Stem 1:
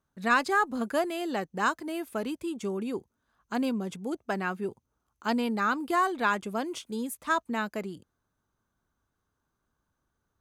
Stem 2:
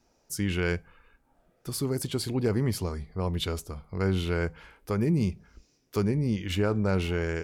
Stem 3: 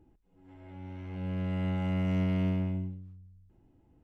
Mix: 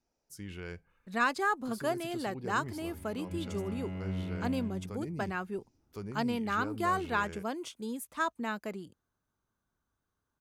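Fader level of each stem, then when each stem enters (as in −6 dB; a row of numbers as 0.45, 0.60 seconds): −4.5, −15.0, −9.0 decibels; 0.90, 0.00, 2.00 seconds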